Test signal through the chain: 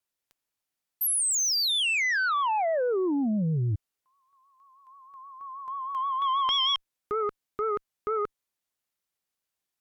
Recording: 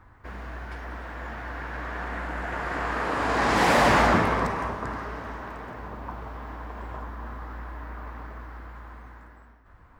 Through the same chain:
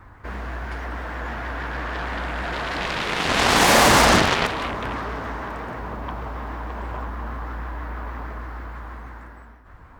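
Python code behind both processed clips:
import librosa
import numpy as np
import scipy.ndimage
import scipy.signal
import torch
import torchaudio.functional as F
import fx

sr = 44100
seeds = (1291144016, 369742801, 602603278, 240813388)

y = fx.cheby_harmonics(x, sr, harmonics=(4, 7), levels_db=(-32, -9), full_scale_db=-12.0)
y = fx.vibrato(y, sr, rate_hz=6.3, depth_cents=70.0)
y = F.gain(torch.from_numpy(y), 4.0).numpy()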